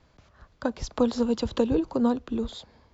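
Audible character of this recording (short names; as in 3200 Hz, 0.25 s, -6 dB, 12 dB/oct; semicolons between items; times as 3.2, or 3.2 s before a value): noise floor -61 dBFS; spectral tilt -5.5 dB/oct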